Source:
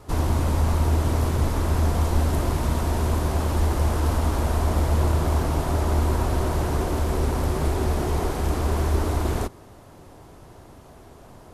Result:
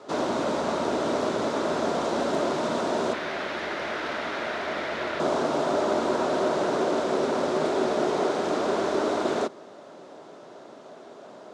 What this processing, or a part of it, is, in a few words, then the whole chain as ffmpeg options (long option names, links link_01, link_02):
television speaker: -filter_complex "[0:a]asettb=1/sr,asplit=3[link_01][link_02][link_03];[link_01]atrim=end=3.134[link_04];[link_02]atrim=start=3.13:end=5.2,asetpts=PTS-STARTPTS,afade=type=in:duration=0.004:curve=qsin,afade=type=out:start_time=2.066:duration=0.004:curve=qsin,equalizer=frequency=125:width_type=o:width=1:gain=-6,equalizer=frequency=250:width_type=o:width=1:gain=-7,equalizer=frequency=500:width_type=o:width=1:gain=-6,equalizer=frequency=1000:width_type=o:width=1:gain=-6,equalizer=frequency=2000:width_type=o:width=1:gain=10,equalizer=frequency=8000:width_type=o:width=1:gain=-12[link_05];[link_03]atrim=start=5.196[link_06];[link_04][link_05]acrossfade=duration=0.004:curve1=hsin:curve2=qsin[link_07];[link_07][link_06]acrossfade=duration=0.004:curve1=qsin:curve2=hsin,highpass=frequency=200:width=0.5412,highpass=frequency=200:width=1.3066,equalizer=frequency=410:width_type=q:width=4:gain=4,equalizer=frequency=600:width_type=q:width=4:gain=9,equalizer=frequency=1400:width_type=q:width=4:gain=5,equalizer=frequency=3700:width_type=q:width=4:gain=5,lowpass=frequency=7100:width=0.5412,lowpass=frequency=7100:width=1.3066"